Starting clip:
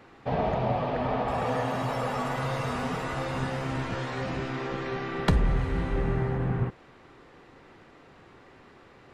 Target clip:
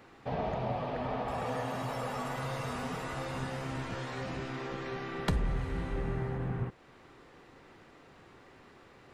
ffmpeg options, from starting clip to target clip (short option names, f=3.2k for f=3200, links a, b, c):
-filter_complex "[0:a]highshelf=f=6.4k:g=7,asplit=2[a][b];[b]acompressor=threshold=-39dB:ratio=6,volume=-3dB[c];[a][c]amix=inputs=2:normalize=0,volume=-8dB"